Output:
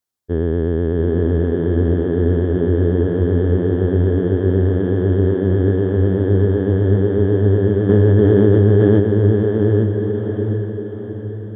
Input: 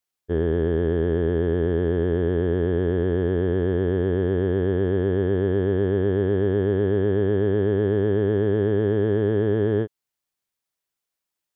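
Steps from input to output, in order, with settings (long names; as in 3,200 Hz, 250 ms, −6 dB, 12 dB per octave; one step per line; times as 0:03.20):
graphic EQ with 15 bands 100 Hz +7 dB, 250 Hz +5 dB, 2,500 Hz −6 dB
feedback delay with all-pass diffusion 749 ms, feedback 47%, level −4 dB
0:07.89–0:09.00: envelope flattener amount 100%
level +1 dB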